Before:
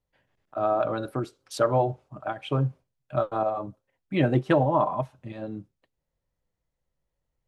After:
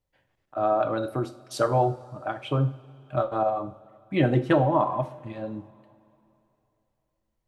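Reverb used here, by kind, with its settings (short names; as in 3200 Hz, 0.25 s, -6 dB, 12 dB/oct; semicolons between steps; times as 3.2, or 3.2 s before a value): two-slope reverb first 0.42 s, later 3 s, from -19 dB, DRR 8.5 dB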